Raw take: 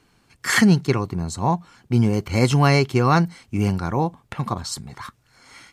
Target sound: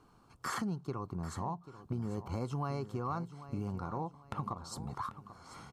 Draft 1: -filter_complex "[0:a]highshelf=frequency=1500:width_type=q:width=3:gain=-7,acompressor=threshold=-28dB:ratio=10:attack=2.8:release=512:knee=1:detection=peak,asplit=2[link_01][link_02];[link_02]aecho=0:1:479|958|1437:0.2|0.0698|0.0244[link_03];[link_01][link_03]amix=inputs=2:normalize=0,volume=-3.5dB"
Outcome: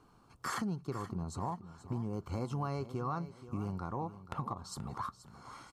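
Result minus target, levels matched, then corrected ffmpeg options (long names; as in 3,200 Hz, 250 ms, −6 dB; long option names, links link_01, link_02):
echo 311 ms early
-filter_complex "[0:a]highshelf=frequency=1500:width_type=q:width=3:gain=-7,acompressor=threshold=-28dB:ratio=10:attack=2.8:release=512:knee=1:detection=peak,asplit=2[link_01][link_02];[link_02]aecho=0:1:790|1580|2370:0.2|0.0698|0.0244[link_03];[link_01][link_03]amix=inputs=2:normalize=0,volume=-3.5dB"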